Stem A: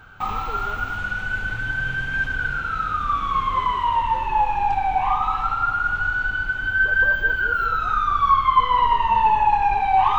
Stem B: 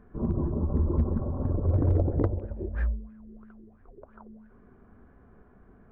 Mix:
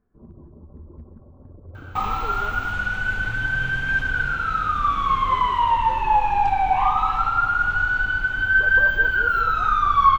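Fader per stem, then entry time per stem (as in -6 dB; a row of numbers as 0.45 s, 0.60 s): +1.5 dB, -17.0 dB; 1.75 s, 0.00 s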